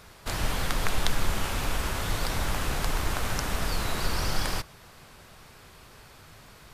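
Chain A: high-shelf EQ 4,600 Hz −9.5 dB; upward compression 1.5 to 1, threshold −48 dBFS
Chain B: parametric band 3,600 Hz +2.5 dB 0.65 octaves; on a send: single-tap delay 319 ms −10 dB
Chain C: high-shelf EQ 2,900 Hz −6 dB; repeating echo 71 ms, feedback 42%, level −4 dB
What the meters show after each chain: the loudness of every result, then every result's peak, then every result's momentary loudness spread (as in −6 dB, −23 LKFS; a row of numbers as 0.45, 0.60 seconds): −32.0, −29.5, −30.0 LKFS; −7.5, −5.5, −7.0 dBFS; 4, 21, 3 LU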